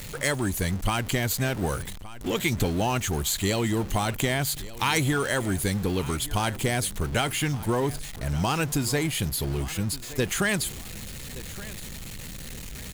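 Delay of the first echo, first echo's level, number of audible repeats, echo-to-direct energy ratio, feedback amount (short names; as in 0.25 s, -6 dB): 1.17 s, -17.5 dB, 2, -17.0 dB, 30%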